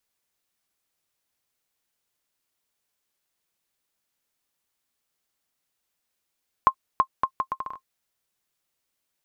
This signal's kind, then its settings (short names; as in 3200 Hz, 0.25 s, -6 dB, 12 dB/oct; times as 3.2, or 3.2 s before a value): bouncing ball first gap 0.33 s, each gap 0.71, 1060 Hz, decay 73 ms -5.5 dBFS